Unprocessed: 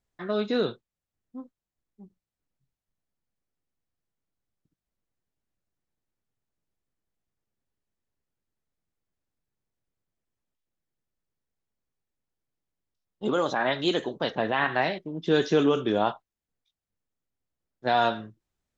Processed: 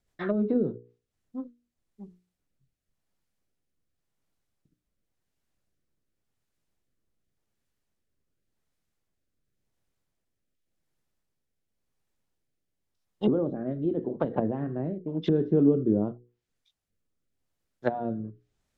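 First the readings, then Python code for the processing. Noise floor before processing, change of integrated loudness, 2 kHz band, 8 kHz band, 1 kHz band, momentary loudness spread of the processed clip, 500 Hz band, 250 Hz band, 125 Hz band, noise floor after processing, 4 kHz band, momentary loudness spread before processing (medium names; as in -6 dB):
under -85 dBFS, -1.5 dB, -16.0 dB, no reading, -12.0 dB, 18 LU, -2.5 dB, +3.0 dB, +5.0 dB, -82 dBFS, -18.5 dB, 12 LU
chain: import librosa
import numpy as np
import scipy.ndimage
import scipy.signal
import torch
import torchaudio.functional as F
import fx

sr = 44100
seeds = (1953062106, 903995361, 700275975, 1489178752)

y = fx.hum_notches(x, sr, base_hz=60, count=8)
y = fx.env_lowpass_down(y, sr, base_hz=310.0, full_db=-24.5)
y = fx.rotary_switch(y, sr, hz=7.0, then_hz=0.9, switch_at_s=0.46)
y = y * 10.0 ** (7.0 / 20.0)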